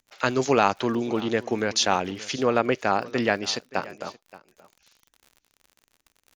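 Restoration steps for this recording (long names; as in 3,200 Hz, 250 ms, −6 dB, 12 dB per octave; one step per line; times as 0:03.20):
click removal
echo removal 576 ms −19.5 dB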